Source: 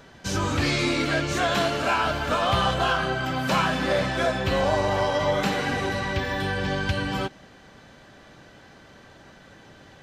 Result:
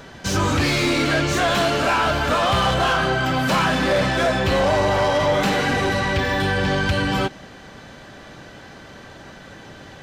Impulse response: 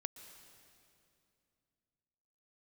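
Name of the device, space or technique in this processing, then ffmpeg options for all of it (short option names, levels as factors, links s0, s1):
saturation between pre-emphasis and de-emphasis: -af "highshelf=f=3200:g=11,asoftclip=type=tanh:threshold=0.0841,highshelf=f=3200:g=-11,volume=2.66"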